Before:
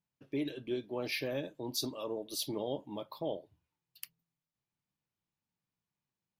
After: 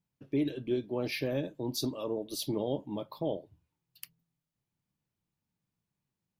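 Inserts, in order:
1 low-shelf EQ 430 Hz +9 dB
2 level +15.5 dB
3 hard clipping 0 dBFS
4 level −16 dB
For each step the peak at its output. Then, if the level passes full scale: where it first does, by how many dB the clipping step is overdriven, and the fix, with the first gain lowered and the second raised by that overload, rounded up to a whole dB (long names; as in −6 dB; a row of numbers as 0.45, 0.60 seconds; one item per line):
−19.5, −4.0, −4.0, −20.0 dBFS
no step passes full scale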